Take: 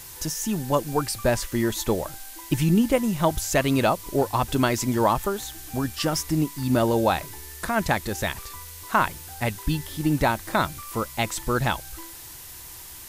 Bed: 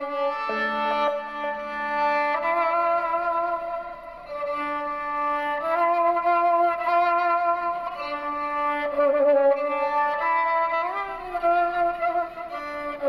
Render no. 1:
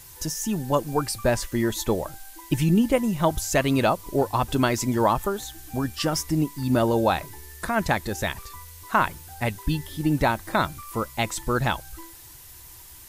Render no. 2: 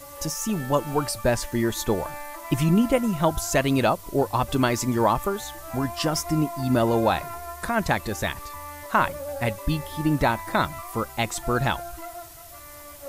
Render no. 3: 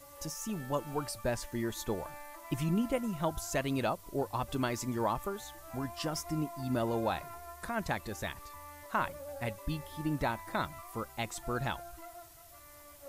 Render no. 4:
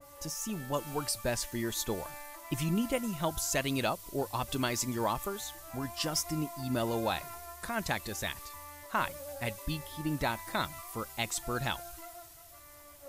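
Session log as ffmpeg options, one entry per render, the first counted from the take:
-af "afftdn=nr=6:nf=-42"
-filter_complex "[1:a]volume=0.178[s0];[0:a][s0]amix=inputs=2:normalize=0"
-af "volume=0.282"
-af "adynamicequalizer=threshold=0.00316:dfrequency=2100:dqfactor=0.7:tfrequency=2100:tqfactor=0.7:attack=5:release=100:ratio=0.375:range=4:mode=boostabove:tftype=highshelf"

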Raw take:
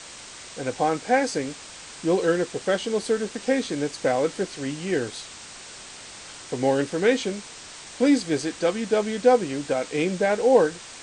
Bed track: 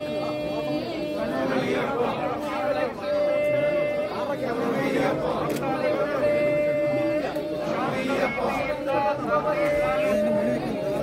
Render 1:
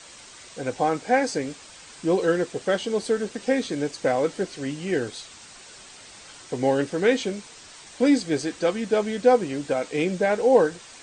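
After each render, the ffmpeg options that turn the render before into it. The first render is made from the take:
-af "afftdn=nr=6:nf=-42"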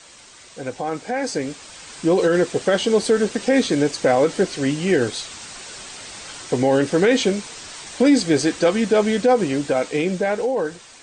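-af "alimiter=limit=0.15:level=0:latency=1:release=51,dynaudnorm=f=390:g=9:m=2.82"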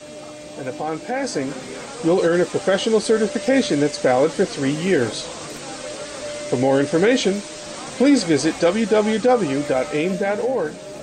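-filter_complex "[1:a]volume=0.355[s0];[0:a][s0]amix=inputs=2:normalize=0"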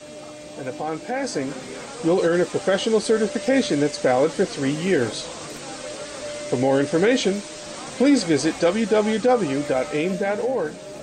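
-af "volume=0.794"

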